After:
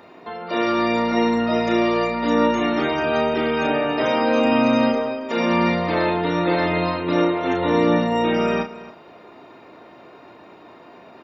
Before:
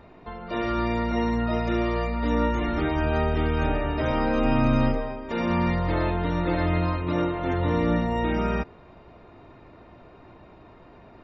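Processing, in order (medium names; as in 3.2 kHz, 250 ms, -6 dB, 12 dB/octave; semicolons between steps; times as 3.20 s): high-pass 250 Hz 12 dB/octave; treble shelf 4.3 kHz +7 dB; doubling 34 ms -7 dB; delay 274 ms -17 dB; trim +5.5 dB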